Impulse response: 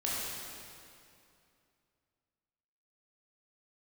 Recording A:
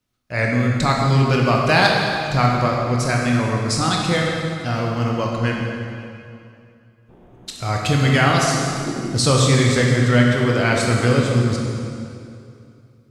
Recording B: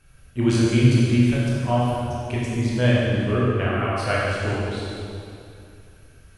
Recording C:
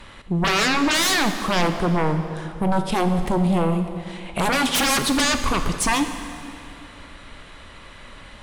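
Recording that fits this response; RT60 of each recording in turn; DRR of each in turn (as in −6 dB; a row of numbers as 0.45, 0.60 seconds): B; 2.6, 2.6, 2.5 seconds; −1.5, −7.0, 7.0 decibels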